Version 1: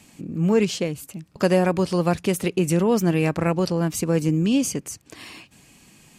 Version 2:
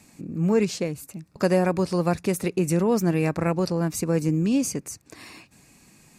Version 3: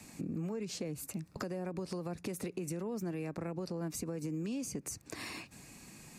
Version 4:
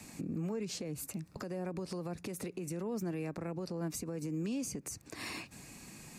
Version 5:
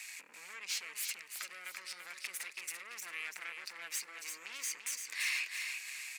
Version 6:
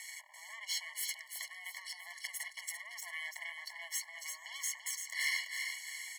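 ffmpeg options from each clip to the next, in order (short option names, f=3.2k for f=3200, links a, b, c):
-af "equalizer=f=3.1k:w=5.9:g=-12.5,volume=-2dB"
-filter_complex "[0:a]acrossover=split=220|460[a][b][c];[a]acompressor=threshold=-38dB:ratio=4[d];[b]acompressor=threshold=-31dB:ratio=4[e];[c]acompressor=threshold=-38dB:ratio=4[f];[d][e][f]amix=inputs=3:normalize=0,alimiter=level_in=1dB:limit=-24dB:level=0:latency=1:release=81,volume=-1dB,acompressor=threshold=-36dB:ratio=6,volume=1dB"
-af "alimiter=level_in=8dB:limit=-24dB:level=0:latency=1:release=173,volume=-8dB,volume=2dB"
-af "aeval=exprs='(tanh(100*val(0)+0.7)-tanh(0.7))/100':c=same,highpass=f=2.1k:t=q:w=2.6,aecho=1:1:338|676|1014|1352|1690:0.501|0.2|0.0802|0.0321|0.0128,volume=8dB"
-af "afftfilt=real='re*eq(mod(floor(b*sr/1024/570),2),1)':imag='im*eq(mod(floor(b*sr/1024/570),2),1)':win_size=1024:overlap=0.75,volume=3.5dB"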